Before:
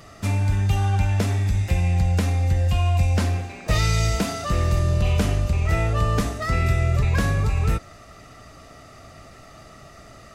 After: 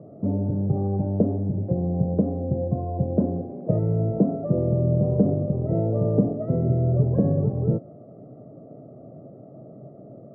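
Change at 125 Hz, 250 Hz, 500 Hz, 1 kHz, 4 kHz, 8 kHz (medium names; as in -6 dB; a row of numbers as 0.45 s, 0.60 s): -3.0 dB, +6.0 dB, +5.0 dB, -9.0 dB, under -40 dB, under -40 dB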